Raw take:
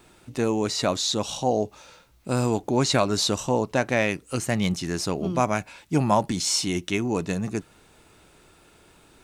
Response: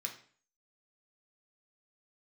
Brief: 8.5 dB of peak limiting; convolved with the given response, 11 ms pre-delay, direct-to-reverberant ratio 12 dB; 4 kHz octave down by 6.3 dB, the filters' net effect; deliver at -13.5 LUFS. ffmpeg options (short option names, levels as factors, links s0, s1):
-filter_complex "[0:a]equalizer=f=4000:t=o:g=-8,alimiter=limit=0.158:level=0:latency=1,asplit=2[s0][s1];[1:a]atrim=start_sample=2205,adelay=11[s2];[s1][s2]afir=irnorm=-1:irlink=0,volume=0.266[s3];[s0][s3]amix=inputs=2:normalize=0,volume=5.01"